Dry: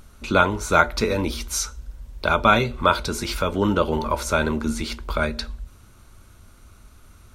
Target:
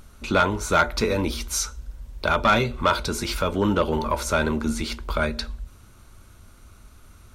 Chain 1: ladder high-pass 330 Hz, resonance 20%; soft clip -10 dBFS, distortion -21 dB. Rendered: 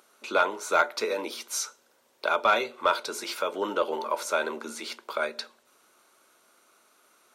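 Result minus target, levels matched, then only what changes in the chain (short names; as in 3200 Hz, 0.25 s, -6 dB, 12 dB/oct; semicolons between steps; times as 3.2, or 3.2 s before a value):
250 Hz band -9.5 dB
remove: ladder high-pass 330 Hz, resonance 20%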